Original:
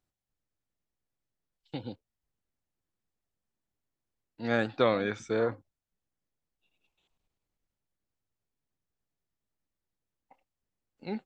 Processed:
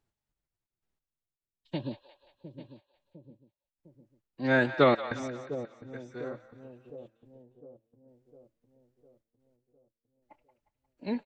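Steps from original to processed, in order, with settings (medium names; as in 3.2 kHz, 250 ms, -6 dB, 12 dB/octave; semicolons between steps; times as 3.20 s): treble shelf 4.8 kHz -7 dB; on a send: delay 847 ms -15 dB; on the sum: trance gate "xxxx.x....xxx" 91 bpm -24 dB; two-band feedback delay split 590 Hz, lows 705 ms, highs 178 ms, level -12 dB; formant-preserving pitch shift +2 st; trim +4 dB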